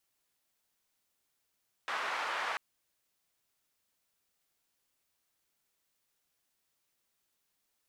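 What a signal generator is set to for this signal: noise band 1–1.3 kHz, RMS -35.5 dBFS 0.69 s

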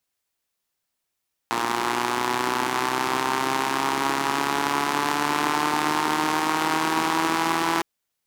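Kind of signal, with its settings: four-cylinder engine model, changing speed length 6.31 s, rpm 3500, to 5000, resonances 340/910 Hz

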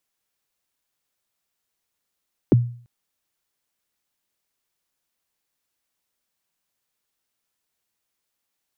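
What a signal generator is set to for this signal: kick drum length 0.34 s, from 450 Hz, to 120 Hz, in 20 ms, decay 0.47 s, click off, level -8 dB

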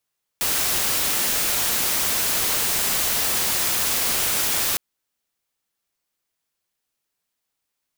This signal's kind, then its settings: noise white, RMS -22 dBFS 4.36 s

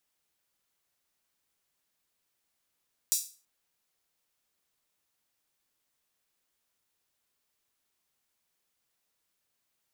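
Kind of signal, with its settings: open hi-hat length 0.33 s, high-pass 6 kHz, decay 0.36 s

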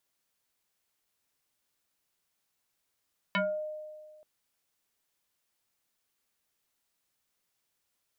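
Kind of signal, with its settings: FM tone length 0.88 s, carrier 613 Hz, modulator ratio 1.31, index 3.6, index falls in 0.31 s exponential, decay 1.76 s, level -24 dB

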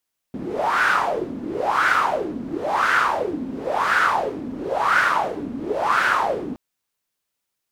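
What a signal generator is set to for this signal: wind-like swept noise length 6.22 s, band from 250 Hz, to 1.5 kHz, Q 6.6, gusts 6, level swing 12 dB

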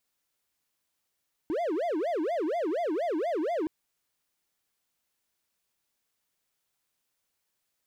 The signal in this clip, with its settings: siren wail 301–705 Hz 4.2 per s triangle -24.5 dBFS 2.17 s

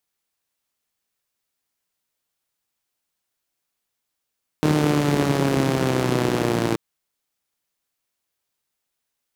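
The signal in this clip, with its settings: four-cylinder engine model, changing speed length 2.13 s, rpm 4600, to 3400, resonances 170/300 Hz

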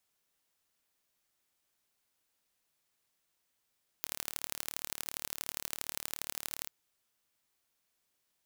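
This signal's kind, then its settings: pulse train 37.2 per s, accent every 3, -7.5 dBFS 2.66 s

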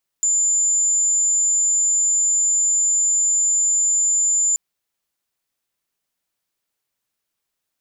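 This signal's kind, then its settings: tone sine 7.11 kHz -15 dBFS 4.33 s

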